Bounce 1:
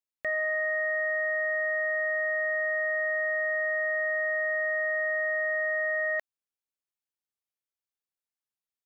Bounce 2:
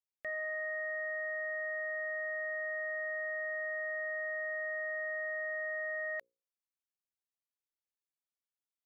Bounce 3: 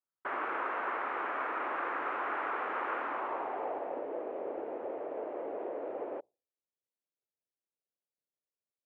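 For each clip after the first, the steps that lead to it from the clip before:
mains-hum notches 60/120/180/240/300/360/420/480/540 Hz; level −9 dB
cochlear-implant simulation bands 4; low-pass filter sweep 1,300 Hz → 540 Hz, 0:02.99–0:04.09

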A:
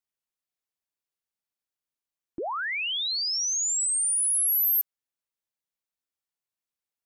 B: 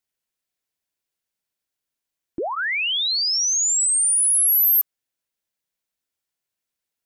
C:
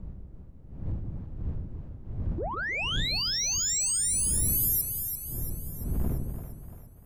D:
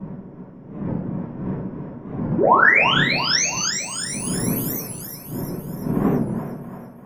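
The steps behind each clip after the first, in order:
parametric band 870 Hz −3.5 dB 0.33 octaves; notch filter 1,200 Hz, Q 9.8; level +6.5 dB
wind on the microphone 100 Hz −24 dBFS; soft clipping −16.5 dBFS, distortion −10 dB; echo with a time of its own for lows and highs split 500 Hz, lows 153 ms, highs 342 ms, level −7 dB; level −7 dB
convolution reverb RT60 0.45 s, pre-delay 3 ms, DRR −14.5 dB; wow of a warped record 45 rpm, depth 160 cents; level +1.5 dB

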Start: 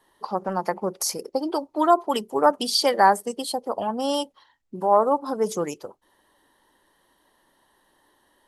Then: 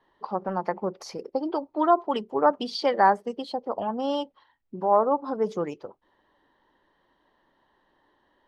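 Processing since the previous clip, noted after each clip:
high-frequency loss of the air 240 metres
level −1.5 dB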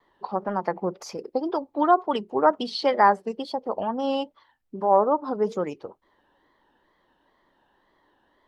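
tape wow and flutter 100 cents
level +1.5 dB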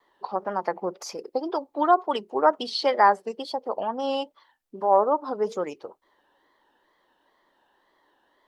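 bass and treble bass −11 dB, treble +4 dB

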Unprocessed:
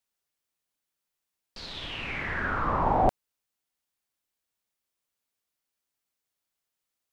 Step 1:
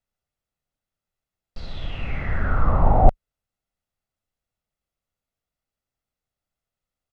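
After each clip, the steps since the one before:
spectral tilt −3 dB per octave
comb filter 1.5 ms, depth 37%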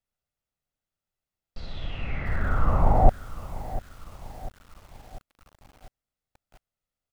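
feedback echo at a low word length 697 ms, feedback 55%, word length 6 bits, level −15 dB
level −3 dB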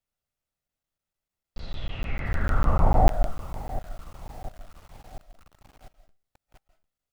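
on a send at −12 dB: convolution reverb RT60 0.35 s, pre-delay 120 ms
on the sum: regular buffer underruns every 0.15 s, samples 512, zero, from 0:00.68

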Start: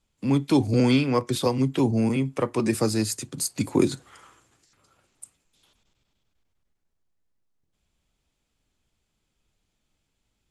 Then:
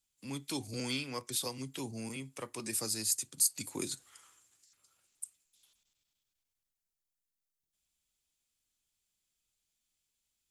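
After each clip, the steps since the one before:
first-order pre-emphasis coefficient 0.9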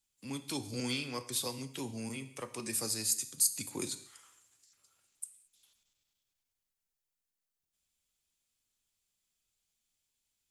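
reverb whose tail is shaped and stops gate 250 ms falling, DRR 10.5 dB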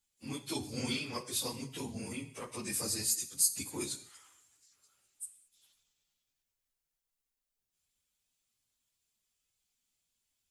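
random phases in long frames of 50 ms

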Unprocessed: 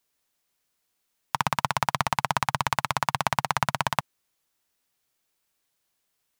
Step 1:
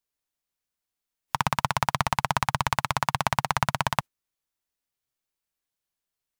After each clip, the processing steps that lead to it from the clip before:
noise reduction from a noise print of the clip's start 11 dB
low-shelf EQ 86 Hz +8.5 dB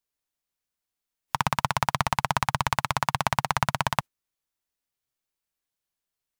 no processing that can be heard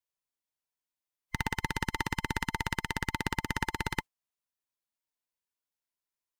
frequency inversion band by band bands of 1,000 Hz
level −7 dB

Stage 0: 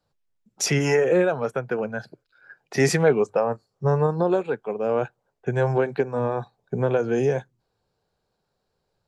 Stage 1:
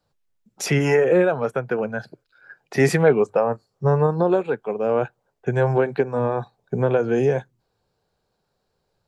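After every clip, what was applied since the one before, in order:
dynamic equaliser 5,900 Hz, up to −8 dB, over −48 dBFS, Q 1.2
level +2.5 dB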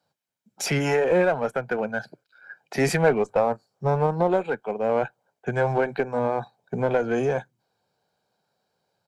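high-pass filter 180 Hz 12 dB per octave
comb filter 1.3 ms, depth 37%
in parallel at −3.5 dB: asymmetric clip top −23.5 dBFS
on the sum: level −5 dB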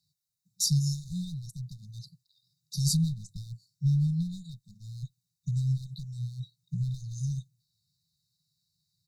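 linear-phase brick-wall band-stop 180–3,600 Hz
level +3 dB

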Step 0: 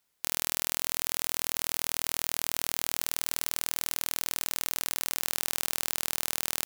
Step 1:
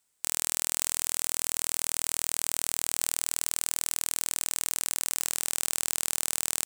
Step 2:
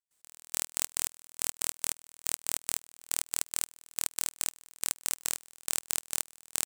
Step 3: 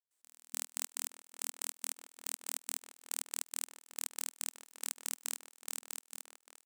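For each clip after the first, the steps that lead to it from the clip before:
parametric band 8,100 Hz +11.5 dB 0.53 octaves; level −2 dB
gate pattern ".x...x.x" 140 BPM −24 dB
fade-out on the ending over 1.20 s; linear-phase brick-wall high-pass 240 Hz; slap from a distant wall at 98 metres, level −8 dB; level −7.5 dB

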